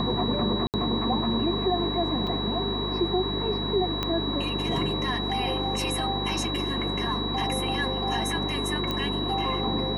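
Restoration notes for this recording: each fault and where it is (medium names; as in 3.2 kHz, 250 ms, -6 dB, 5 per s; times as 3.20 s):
hum 50 Hz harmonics 7 -33 dBFS
whine 3.9 kHz -31 dBFS
0.67–0.74 s: dropout 68 ms
2.27 s: dropout 3.6 ms
4.03 s: pop -13 dBFS
8.91 s: pop -15 dBFS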